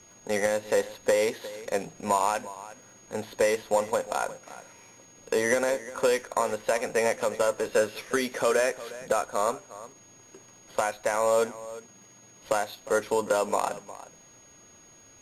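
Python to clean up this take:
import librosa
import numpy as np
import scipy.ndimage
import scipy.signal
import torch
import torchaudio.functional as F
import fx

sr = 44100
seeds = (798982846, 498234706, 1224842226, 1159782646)

y = fx.fix_declick_ar(x, sr, threshold=6.5)
y = fx.notch(y, sr, hz=6600.0, q=30.0)
y = fx.fix_echo_inverse(y, sr, delay_ms=357, level_db=-16.5)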